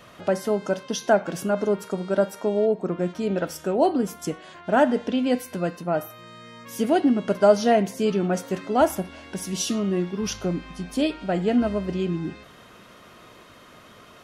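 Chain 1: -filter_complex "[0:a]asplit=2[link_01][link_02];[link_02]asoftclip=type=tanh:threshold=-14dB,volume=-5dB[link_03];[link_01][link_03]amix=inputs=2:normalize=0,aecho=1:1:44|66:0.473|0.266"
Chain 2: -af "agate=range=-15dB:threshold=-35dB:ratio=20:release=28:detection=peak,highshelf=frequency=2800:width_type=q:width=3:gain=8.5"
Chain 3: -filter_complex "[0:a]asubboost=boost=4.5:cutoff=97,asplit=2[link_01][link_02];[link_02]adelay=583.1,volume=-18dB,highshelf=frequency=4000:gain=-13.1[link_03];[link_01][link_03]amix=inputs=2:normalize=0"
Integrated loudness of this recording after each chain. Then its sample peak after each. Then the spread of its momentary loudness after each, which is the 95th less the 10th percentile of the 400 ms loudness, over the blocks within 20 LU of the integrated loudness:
−20.0, −23.5, −25.5 LKFS; −1.5, −4.5, −6.0 dBFS; 11, 11, 12 LU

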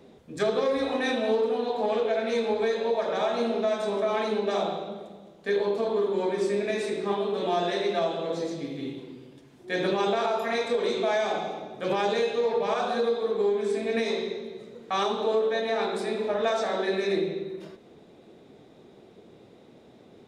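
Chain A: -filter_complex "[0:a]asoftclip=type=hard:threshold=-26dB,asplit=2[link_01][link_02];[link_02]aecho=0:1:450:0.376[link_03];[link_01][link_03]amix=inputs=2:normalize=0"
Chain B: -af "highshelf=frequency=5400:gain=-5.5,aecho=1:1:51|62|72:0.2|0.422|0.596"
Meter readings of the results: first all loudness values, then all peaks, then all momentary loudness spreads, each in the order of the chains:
−29.5, −25.5 LKFS; −23.0, −12.0 dBFS; 7, 9 LU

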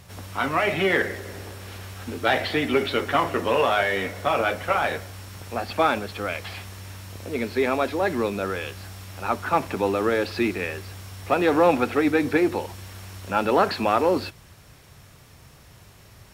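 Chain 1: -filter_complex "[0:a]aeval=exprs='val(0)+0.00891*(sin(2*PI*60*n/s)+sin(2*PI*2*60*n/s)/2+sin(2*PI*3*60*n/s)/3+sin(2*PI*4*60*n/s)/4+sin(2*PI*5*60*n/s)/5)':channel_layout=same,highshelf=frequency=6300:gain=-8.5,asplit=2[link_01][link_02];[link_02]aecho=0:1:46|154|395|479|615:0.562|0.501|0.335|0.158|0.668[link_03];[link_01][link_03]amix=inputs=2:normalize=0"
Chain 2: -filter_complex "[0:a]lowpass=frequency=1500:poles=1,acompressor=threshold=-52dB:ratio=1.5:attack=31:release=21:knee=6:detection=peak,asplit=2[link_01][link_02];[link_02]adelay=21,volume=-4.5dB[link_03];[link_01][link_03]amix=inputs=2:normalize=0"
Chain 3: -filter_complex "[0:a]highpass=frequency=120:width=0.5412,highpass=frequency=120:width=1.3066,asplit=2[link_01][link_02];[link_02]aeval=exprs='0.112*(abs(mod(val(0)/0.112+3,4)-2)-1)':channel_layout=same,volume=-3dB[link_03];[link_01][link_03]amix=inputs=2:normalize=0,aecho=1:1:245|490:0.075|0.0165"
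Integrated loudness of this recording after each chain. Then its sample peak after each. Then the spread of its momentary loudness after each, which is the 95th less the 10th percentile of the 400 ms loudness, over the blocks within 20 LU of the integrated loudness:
−21.5, −33.5, −21.0 LKFS; −3.5, −14.5, −7.5 dBFS; 13, 20, 17 LU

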